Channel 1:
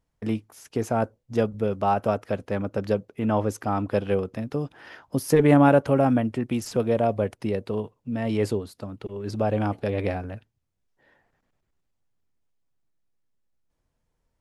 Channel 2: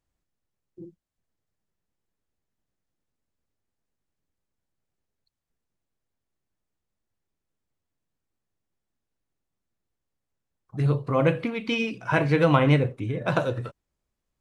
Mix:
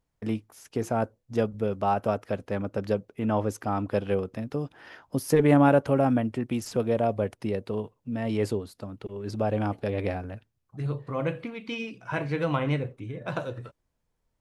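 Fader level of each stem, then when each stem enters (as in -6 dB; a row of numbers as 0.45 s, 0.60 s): -2.5 dB, -7.5 dB; 0.00 s, 0.00 s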